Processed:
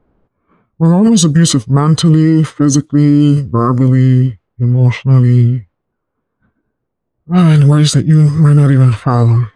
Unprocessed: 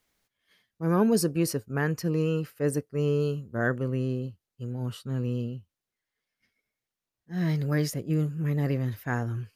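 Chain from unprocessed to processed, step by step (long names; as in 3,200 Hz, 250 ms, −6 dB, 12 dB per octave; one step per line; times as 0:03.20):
low-pass that shuts in the quiet parts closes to 820 Hz, open at −25 dBFS
formants moved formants −6 semitones
boost into a limiter +24.5 dB
level −1 dB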